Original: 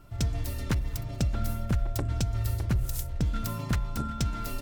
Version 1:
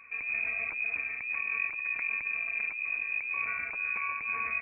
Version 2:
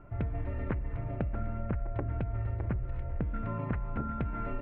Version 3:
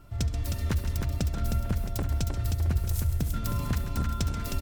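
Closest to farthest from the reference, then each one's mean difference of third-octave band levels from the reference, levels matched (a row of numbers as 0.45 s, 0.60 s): 3, 2, 1; 4.0 dB, 9.0 dB, 19.0 dB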